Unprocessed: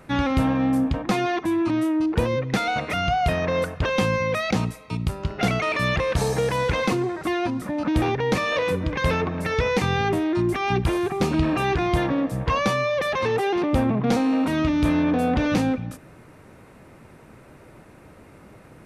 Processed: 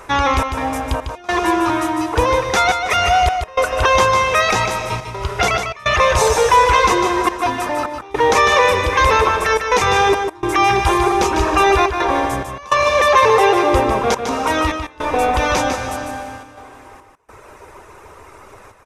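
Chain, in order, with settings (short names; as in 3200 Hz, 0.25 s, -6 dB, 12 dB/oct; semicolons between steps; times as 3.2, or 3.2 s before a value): reverb removal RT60 2 s; in parallel at +1 dB: limiter -18.5 dBFS, peak gain reduction 7.5 dB; on the sum: fifteen-band EQ 160 Hz -11 dB, 400 Hz +12 dB, 1000 Hz +10 dB, 6300 Hz +7 dB; reverb RT60 2.8 s, pre-delay 0.11 s, DRR 6.5 dB; step gate "xxx.xxx..xxxxxxx" 105 bpm -24 dB; bell 290 Hz -13.5 dB 1.9 oct; notch 4400 Hz, Q 14; echo 0.15 s -6.5 dB; gain +3.5 dB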